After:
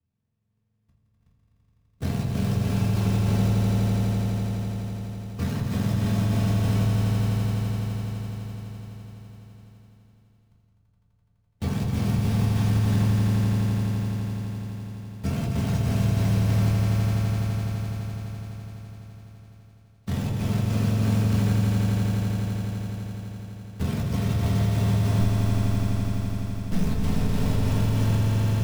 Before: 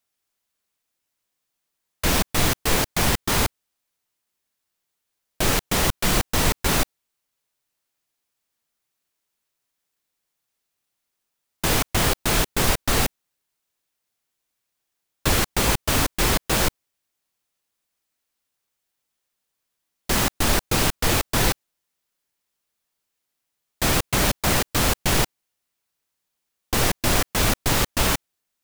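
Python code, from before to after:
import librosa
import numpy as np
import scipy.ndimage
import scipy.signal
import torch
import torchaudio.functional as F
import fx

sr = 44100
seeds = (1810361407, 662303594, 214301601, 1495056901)

y = fx.octave_mirror(x, sr, pivot_hz=860.0)
y = scipy.signal.sosfilt(scipy.signal.butter(2, 5600.0, 'lowpass', fs=sr, output='sos'), y)
y = fx.low_shelf(y, sr, hz=200.0, db=11.0)
y = fx.ring_mod(y, sr, carrier_hz=78.0, at=(25.18, 26.84))
y = fx.quant_float(y, sr, bits=2)
y = fx.level_steps(y, sr, step_db=21)
y = fx.echo_swell(y, sr, ms=84, loudest=5, wet_db=-5.5)
y = fx.room_shoebox(y, sr, seeds[0], volume_m3=190.0, walls='furnished', distance_m=1.6)
y = fx.band_squash(y, sr, depth_pct=40)
y = y * 10.0 ** (-6.5 / 20.0)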